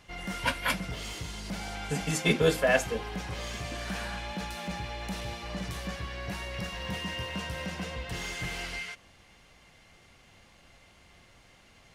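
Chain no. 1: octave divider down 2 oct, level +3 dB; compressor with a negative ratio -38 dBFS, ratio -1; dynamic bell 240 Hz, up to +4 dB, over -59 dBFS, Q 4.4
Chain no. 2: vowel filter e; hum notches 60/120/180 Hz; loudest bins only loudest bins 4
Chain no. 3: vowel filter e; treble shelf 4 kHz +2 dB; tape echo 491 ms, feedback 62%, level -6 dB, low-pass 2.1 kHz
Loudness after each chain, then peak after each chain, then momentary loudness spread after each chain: -37.0 LUFS, -43.0 LUFS, -41.0 LUFS; -21.0 dBFS, -21.0 dBFS, -19.0 dBFS; 16 LU, 23 LU, 17 LU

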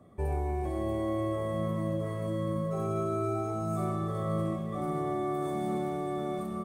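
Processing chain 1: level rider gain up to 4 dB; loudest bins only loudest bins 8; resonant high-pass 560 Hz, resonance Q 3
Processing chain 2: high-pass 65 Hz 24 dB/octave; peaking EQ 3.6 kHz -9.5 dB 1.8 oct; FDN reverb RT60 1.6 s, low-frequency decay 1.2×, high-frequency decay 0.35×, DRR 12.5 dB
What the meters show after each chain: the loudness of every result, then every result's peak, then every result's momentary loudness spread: -27.5 LUFS, -32.5 LUFS; -16.5 dBFS, -20.0 dBFS; 9 LU, 3 LU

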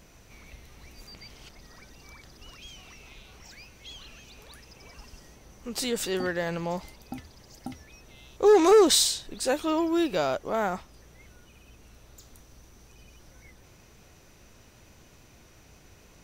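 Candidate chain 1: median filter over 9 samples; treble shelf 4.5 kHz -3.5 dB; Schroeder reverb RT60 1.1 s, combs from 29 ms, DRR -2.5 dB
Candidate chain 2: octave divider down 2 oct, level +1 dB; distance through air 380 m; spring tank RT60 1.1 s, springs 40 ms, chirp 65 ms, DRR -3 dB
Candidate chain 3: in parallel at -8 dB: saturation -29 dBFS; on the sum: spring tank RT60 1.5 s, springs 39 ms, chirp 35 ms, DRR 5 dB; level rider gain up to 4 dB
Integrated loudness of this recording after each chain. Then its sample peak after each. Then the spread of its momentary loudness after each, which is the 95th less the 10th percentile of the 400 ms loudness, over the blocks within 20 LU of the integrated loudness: -21.5 LUFS, -21.0 LUFS, -20.0 LUFS; -3.0 dBFS, -2.5 dBFS, -4.0 dBFS; 24 LU, 24 LU, 24 LU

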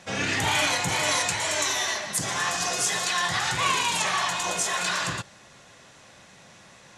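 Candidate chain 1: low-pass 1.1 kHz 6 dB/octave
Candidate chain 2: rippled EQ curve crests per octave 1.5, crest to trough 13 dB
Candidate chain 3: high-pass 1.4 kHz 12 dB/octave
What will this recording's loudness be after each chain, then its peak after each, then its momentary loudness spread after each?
-31.0 LUFS, -21.5 LUFS, -25.5 LUFS; -15.5 dBFS, -8.5 dBFS, -11.0 dBFS; 6 LU, 5 LU, 4 LU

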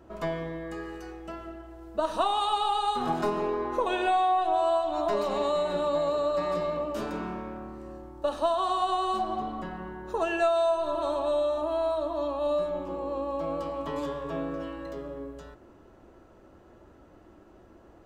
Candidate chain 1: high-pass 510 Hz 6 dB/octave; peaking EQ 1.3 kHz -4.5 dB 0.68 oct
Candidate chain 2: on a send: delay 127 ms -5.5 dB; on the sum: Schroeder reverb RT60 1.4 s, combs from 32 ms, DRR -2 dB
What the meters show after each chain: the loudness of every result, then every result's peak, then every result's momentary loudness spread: -31.5 LUFS, -24.5 LUFS; -17.5 dBFS, -9.0 dBFS; 17 LU, 13 LU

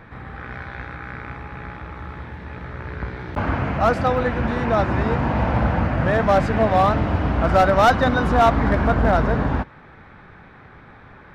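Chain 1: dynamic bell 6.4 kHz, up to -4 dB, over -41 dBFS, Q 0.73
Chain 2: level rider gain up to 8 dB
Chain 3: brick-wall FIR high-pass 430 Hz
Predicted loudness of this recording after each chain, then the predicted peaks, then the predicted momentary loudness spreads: -19.5 LUFS, -13.5 LUFS, -21.5 LUFS; -8.0 dBFS, -2.5 dBFS, -6.0 dBFS; 18 LU, 16 LU, 20 LU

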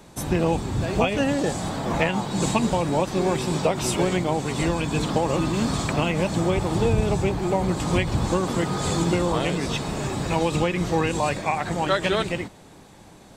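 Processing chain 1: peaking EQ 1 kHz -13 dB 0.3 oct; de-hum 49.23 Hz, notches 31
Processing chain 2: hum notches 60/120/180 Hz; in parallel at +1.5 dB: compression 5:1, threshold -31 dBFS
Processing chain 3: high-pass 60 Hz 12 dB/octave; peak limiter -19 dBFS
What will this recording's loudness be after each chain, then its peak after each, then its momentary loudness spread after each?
-24.5 LUFS, -21.5 LUFS, -28.5 LUFS; -7.0 dBFS, -4.5 dBFS, -19.0 dBFS; 4 LU, 3 LU, 1 LU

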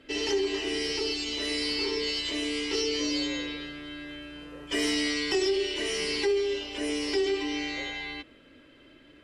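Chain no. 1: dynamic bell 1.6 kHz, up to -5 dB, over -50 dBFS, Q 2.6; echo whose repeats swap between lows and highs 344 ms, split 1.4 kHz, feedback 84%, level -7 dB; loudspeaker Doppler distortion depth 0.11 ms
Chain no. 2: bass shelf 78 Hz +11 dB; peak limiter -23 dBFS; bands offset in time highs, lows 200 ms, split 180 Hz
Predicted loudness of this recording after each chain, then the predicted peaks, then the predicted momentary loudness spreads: -29.0 LUFS, -31.0 LUFS; -16.0 dBFS, -20.5 dBFS; 10 LU, 10 LU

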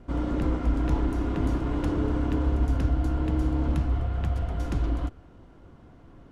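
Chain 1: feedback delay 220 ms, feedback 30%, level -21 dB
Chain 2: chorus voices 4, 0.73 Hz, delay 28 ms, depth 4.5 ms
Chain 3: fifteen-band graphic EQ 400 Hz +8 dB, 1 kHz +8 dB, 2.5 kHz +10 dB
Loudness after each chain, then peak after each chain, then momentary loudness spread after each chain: -27.5 LUFS, -31.0 LUFS, -25.5 LUFS; -11.5 dBFS, -16.0 dBFS, -11.0 dBFS; 4 LU, 3 LU, 5 LU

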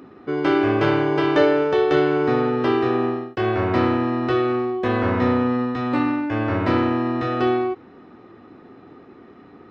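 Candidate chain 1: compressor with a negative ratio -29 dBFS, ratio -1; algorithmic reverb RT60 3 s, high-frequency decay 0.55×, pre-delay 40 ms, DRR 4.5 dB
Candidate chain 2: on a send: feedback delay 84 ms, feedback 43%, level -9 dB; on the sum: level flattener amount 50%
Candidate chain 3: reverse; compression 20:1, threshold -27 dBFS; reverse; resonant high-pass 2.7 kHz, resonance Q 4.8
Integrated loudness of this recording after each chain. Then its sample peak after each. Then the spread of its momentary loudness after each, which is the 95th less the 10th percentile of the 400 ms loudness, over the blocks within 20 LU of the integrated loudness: -28.5 LUFS, -17.0 LUFS, -38.5 LUFS; -11.0 dBFS, -3.5 dBFS, -25.0 dBFS; 10 LU, 14 LU, 19 LU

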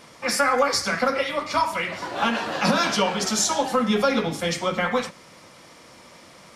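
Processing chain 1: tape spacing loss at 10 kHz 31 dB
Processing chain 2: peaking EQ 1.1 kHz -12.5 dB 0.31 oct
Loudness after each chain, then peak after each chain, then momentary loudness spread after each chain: -26.5 LUFS, -24.0 LUFS; -10.0 dBFS, -9.5 dBFS; 6 LU, 5 LU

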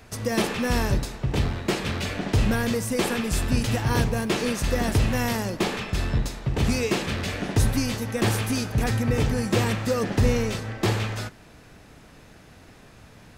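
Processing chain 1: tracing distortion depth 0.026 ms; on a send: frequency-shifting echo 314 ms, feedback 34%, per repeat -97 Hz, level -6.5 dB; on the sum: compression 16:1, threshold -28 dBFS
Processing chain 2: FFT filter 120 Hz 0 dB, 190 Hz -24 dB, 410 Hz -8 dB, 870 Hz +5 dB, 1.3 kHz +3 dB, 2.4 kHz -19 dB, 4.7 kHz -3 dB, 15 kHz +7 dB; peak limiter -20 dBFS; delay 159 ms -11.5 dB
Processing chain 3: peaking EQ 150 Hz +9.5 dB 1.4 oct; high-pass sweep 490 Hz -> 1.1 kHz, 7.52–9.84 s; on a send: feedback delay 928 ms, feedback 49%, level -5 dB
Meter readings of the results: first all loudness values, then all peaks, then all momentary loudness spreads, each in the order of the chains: -33.5 LUFS, -30.5 LUFS, -24.5 LUFS; -16.5 dBFS, -18.0 dBFS, -6.0 dBFS; 11 LU, 3 LU, 11 LU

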